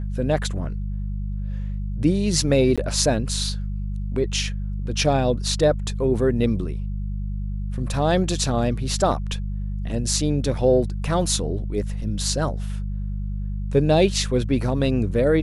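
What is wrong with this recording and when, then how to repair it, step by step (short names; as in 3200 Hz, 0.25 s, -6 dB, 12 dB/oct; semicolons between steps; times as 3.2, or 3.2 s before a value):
hum 50 Hz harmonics 4 -27 dBFS
2.76–2.78 gap 16 ms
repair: de-hum 50 Hz, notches 4; interpolate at 2.76, 16 ms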